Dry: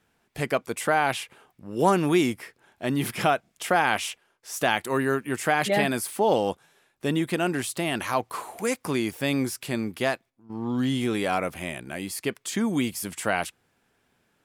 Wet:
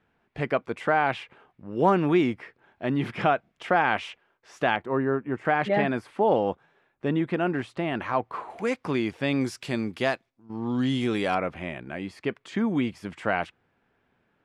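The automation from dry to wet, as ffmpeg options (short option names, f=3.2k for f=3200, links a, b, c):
-af "asetnsamples=n=441:p=0,asendcmd='4.76 lowpass f 1200;5.45 lowpass f 2000;8.5 lowpass f 3400;9.41 lowpass f 5700;11.35 lowpass f 2400',lowpass=2.5k"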